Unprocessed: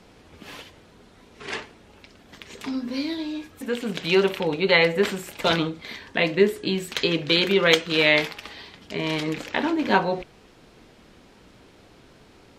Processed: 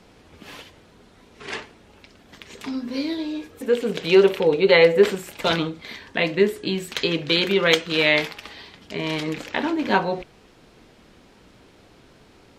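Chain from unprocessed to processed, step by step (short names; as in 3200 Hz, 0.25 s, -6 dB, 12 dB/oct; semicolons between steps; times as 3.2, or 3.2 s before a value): 2.95–5.15 bell 450 Hz +10 dB 0.53 oct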